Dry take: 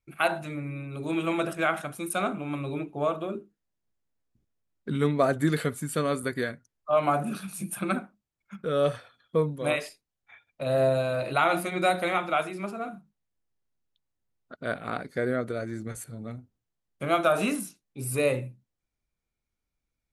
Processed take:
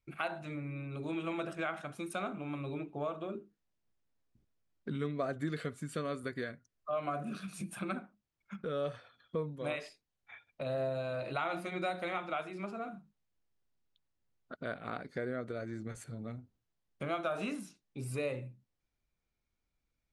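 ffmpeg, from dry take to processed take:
ffmpeg -i in.wav -filter_complex "[0:a]asettb=1/sr,asplit=3[link_01][link_02][link_03];[link_01]atrim=end=4.964[link_04];[link_02]atrim=start=4.96:end=7.69,asetpts=PTS-STARTPTS,afade=type=in:duration=0.004:curve=qsin,afade=type=out:start_time=2.726:duration=0.004:curve=qsin,asuperstop=centerf=870:order=4:qfactor=5.9[link_05];[link_03]atrim=start=7.686[link_06];[link_04][link_05]acrossfade=duration=0.004:curve1=hsin:curve2=qsin[link_07];[link_07][link_06]acrossfade=duration=0.004:curve1=qsin:curve2=hsin,lowpass=6200,acompressor=threshold=-42dB:ratio=2" out.wav

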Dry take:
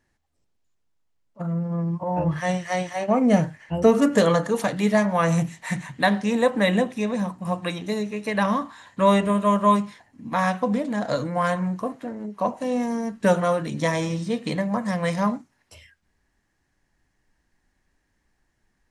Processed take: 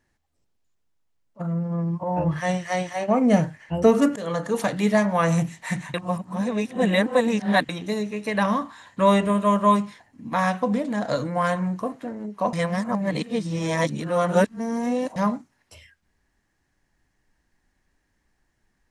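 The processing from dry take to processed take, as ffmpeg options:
ffmpeg -i in.wav -filter_complex "[0:a]asplit=6[link_01][link_02][link_03][link_04][link_05][link_06];[link_01]atrim=end=4.16,asetpts=PTS-STARTPTS,afade=type=out:start_time=4.156:duration=0.004:curve=hsin:silence=0.0707946[link_07];[link_02]atrim=start=4.16:end=5.942,asetpts=PTS-STARTPTS,afade=type=in:duration=0.42:silence=0.0707946[link_08];[link_03]atrim=start=5.938:end=7.692,asetpts=PTS-STARTPTS,areverse[link_09];[link_04]atrim=start=7.688:end=12.532[link_10];[link_05]atrim=start=12.528:end=15.162,asetpts=PTS-STARTPTS,areverse[link_11];[link_06]atrim=start=15.158[link_12];[link_07][link_08]concat=n=2:v=0:a=1[link_13];[link_13][link_09]acrossfade=duration=0.004:curve1=hsin:curve2=hsin[link_14];[link_14][link_10]acrossfade=duration=0.004:curve1=hsin:curve2=hsin[link_15];[link_15][link_11]acrossfade=duration=0.004:curve1=hsin:curve2=hsin[link_16];[link_16][link_12]acrossfade=duration=0.004:curve1=hsin:curve2=hsin" out.wav

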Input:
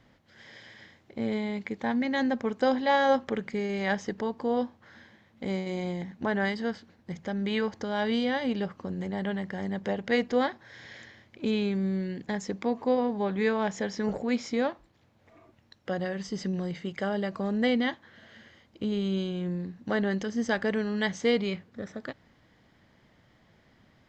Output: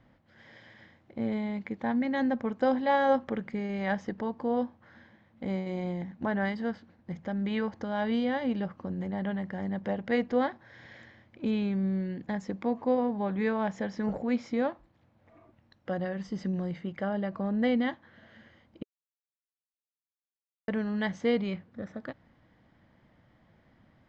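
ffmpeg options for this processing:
ffmpeg -i in.wav -filter_complex "[0:a]asettb=1/sr,asplit=3[link_01][link_02][link_03];[link_01]atrim=end=16.814[link_04];[link_02]atrim=start=16.81:end=17.59,asetpts=PTS-STARTPTS,afade=type=in:duration=0.004:curve=qsin,afade=type=out:start_time=0.776:duration=0.004:curve=qsin,lowpass=frequency=4000:poles=1[link_05];[link_03]atrim=start=17.586[link_06];[link_04][link_05]acrossfade=duration=0.004:curve1=hsin:curve2=qsin[link_07];[link_07][link_06]acrossfade=duration=0.004:curve1=qsin:curve2=hsin,asplit=3[link_08][link_09][link_10];[link_08]atrim=end=18.83,asetpts=PTS-STARTPTS,afade=type=out:start_time=18.826:duration=0.004:curve=hsin[link_11];[link_09]atrim=start=18.83:end=20.68,asetpts=PTS-STARTPTS,volume=0[link_12];[link_10]atrim=start=20.68,asetpts=PTS-STARTPTS,afade=type=in:duration=0.004:curve=hsin[link_13];[link_11][link_12][link_13]concat=n=3:v=0:a=1,lowpass=frequency=1500:poles=1,equalizer=frequency=410:width_type=o:width=0.23:gain=-7" out.wav

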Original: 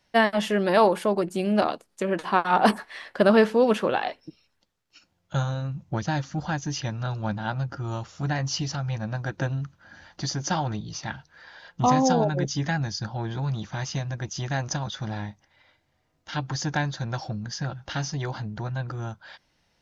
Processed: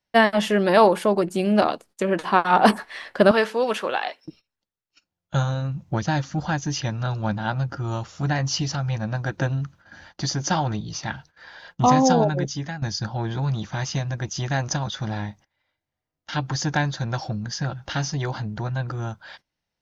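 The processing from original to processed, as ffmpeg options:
ffmpeg -i in.wav -filter_complex "[0:a]asettb=1/sr,asplit=3[link_01][link_02][link_03];[link_01]atrim=end=3.314[link_04];[link_02]atrim=start=3.31:end=4.25,asetpts=PTS-STARTPTS,afade=type=in:duration=0.004:curve=qsin,afade=type=out:start_time=0.936:duration=0.004:curve=qsin,highpass=frequency=860:poles=1[link_05];[link_03]atrim=start=4.246[link_06];[link_04][link_05]acrossfade=duration=0.004:curve1=hsin:curve2=qsin[link_07];[link_07][link_06]acrossfade=duration=0.004:curve1=qsin:curve2=hsin,asplit=2[link_08][link_09];[link_08]atrim=end=12.82,asetpts=PTS-STARTPTS,afade=type=out:start_time=12.23:duration=0.59:silence=0.211349[link_10];[link_09]atrim=start=12.82,asetpts=PTS-STARTPTS,afade=type=in:duration=0.004:curve=hsin:silence=0.211349[link_11];[link_10][link_11]concat=n=2:v=0:a=1,agate=range=-18dB:threshold=-50dB:ratio=16:detection=peak,volume=3.5dB" out.wav

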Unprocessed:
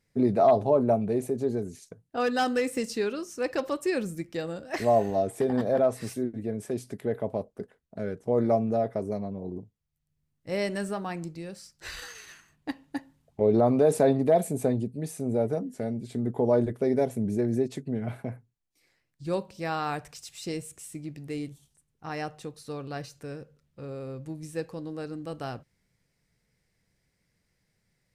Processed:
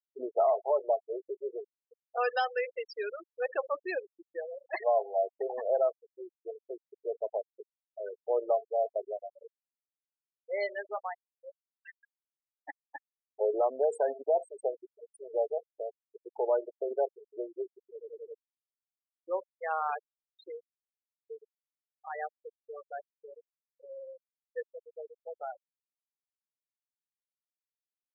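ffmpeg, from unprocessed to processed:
ffmpeg -i in.wav -filter_complex "[0:a]asplit=6[link_01][link_02][link_03][link_04][link_05][link_06];[link_01]atrim=end=17.982[link_07];[link_02]atrim=start=17.888:end=17.982[link_08];[link_03]atrim=start=17.888:end=17.982[link_09];[link_04]atrim=start=17.888:end=17.982[link_10];[link_05]atrim=start=17.888:end=17.982[link_11];[link_06]atrim=start=18.338[link_12];[link_07][link_08]acrossfade=duration=0.004:curve1=hsin:curve2=hsin[link_13];[link_13][link_09]acrossfade=duration=0.004:curve1=hsin:curve2=hsin[link_14];[link_14][link_10]acrossfade=duration=0.004:curve1=hsin:curve2=hsin[link_15];[link_15][link_11]acrossfade=duration=0.004:curve1=hsin:curve2=hsin[link_16];[link_16][link_12]acrossfade=duration=0.004:curve1=hsin:curve2=hsin,highpass=frequency=500:width=0.5412,highpass=frequency=500:width=1.3066,afftfilt=real='re*gte(hypot(re,im),0.0501)':imag='im*gte(hypot(re,im),0.0501)':win_size=1024:overlap=0.75,alimiter=limit=-18.5dB:level=0:latency=1:release=403" out.wav

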